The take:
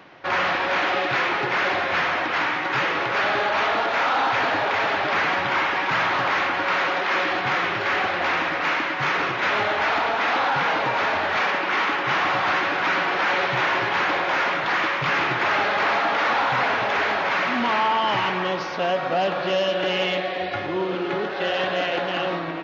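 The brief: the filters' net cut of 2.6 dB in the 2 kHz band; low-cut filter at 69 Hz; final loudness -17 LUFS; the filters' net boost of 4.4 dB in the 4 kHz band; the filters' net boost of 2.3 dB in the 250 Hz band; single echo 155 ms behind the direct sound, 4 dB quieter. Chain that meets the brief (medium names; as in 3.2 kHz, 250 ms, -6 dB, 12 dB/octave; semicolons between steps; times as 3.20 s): high-pass 69 Hz; peaking EQ 250 Hz +3.5 dB; peaking EQ 2 kHz -5.5 dB; peaking EQ 4 kHz +8.5 dB; delay 155 ms -4 dB; trim +4 dB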